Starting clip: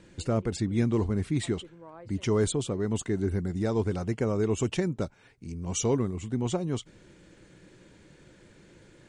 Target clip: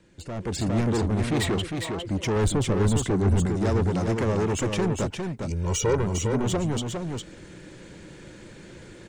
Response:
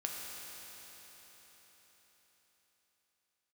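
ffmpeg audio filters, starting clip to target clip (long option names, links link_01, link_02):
-filter_complex "[0:a]acrossover=split=340|610|1800[link_01][link_02][link_03][link_04];[link_04]alimiter=level_in=3.5dB:limit=-24dB:level=0:latency=1:release=436,volume=-3.5dB[link_05];[link_01][link_02][link_03][link_05]amix=inputs=4:normalize=0,asettb=1/sr,asplit=3[link_06][link_07][link_08];[link_06]atrim=end=1.214[link_09];[link_07]atrim=start=1.21:end=1.62,asetpts=PTS-STARTPTS,afade=type=in:duration=0.004:curve=qsin,afade=type=out:start_time=0.406:duration=0.004:curve=qsin,equalizer=frequency=1500:width=0.3:gain=6[link_10];[link_08]atrim=start=1.616[link_11];[link_09][link_10]acrossfade=duration=0.004:curve1=hsin:curve2=qsin[link_12];[link_12][link_11]acrossfade=duration=0.004:curve1=qsin:curve2=hsin,asoftclip=type=tanh:threshold=-31dB,asettb=1/sr,asplit=3[link_13][link_14][link_15];[link_13]atrim=end=2.364[link_16];[link_14]atrim=start=2.36:end=3.46,asetpts=PTS-STARTPTS,afade=type=in:duration=0.004:curve=qsin,afade=type=out:start_time=1.096:duration=0.004:curve=qsin,lowshelf=frequency=100:gain=10.5[link_17];[link_15]atrim=start=3.456[link_18];[link_16][link_17]acrossfade=duration=0.004:curve1=hsin:curve2=qsin[link_19];[link_19][link_18]acrossfade=duration=0.004:curve1=qsin:curve2=hsin,asettb=1/sr,asplit=3[link_20][link_21][link_22];[link_20]atrim=end=5.504[link_23];[link_21]atrim=start=5.5:end=6.04,asetpts=PTS-STARTPTS,afade=type=in:duration=0.004:curve=qsin,afade=type=out:start_time=0.536:duration=0.004:curve=qsin,aecho=1:1:2.1:0.76,atrim=end_sample=23814[link_24];[link_22]atrim=start=6.036[link_25];[link_23][link_24]acrossfade=duration=0.004:curve1=hsin:curve2=qsin[link_26];[link_26][link_25]acrossfade=duration=0.004:curve1=qsin:curve2=hsin,aecho=1:1:406:0.562,dynaudnorm=framelen=170:gausssize=5:maxgain=13.5dB,volume=-4.5dB"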